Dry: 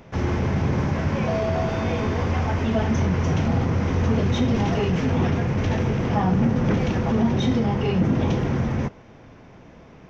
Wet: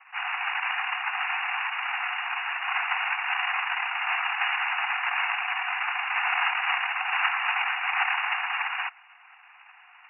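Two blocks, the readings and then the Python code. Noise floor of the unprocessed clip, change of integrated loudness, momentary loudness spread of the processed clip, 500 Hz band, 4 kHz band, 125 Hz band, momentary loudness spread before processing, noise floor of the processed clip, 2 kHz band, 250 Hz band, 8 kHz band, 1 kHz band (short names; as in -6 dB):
-47 dBFS, -4.0 dB, 4 LU, -23.0 dB, +4.5 dB, under -40 dB, 3 LU, -54 dBFS, +10.0 dB, under -40 dB, n/a, +2.0 dB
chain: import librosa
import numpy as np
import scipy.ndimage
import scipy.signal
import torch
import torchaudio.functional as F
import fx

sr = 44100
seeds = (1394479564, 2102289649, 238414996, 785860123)

y = fx.noise_vocoder(x, sr, seeds[0], bands=1)
y = fx.brickwall_bandpass(y, sr, low_hz=700.0, high_hz=2900.0)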